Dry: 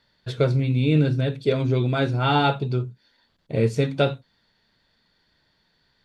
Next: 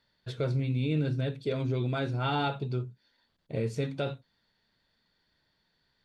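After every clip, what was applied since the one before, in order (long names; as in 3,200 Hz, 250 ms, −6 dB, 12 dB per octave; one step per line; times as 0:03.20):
brickwall limiter −13 dBFS, peak gain reduction 5.5 dB
level −7.5 dB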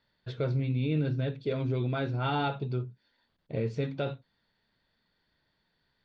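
Bessel low-pass filter 3,900 Hz, order 8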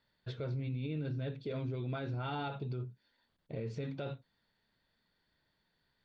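brickwall limiter −27.5 dBFS, peak gain reduction 7 dB
level −3 dB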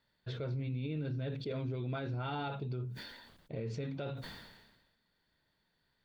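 level that may fall only so fast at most 46 dB per second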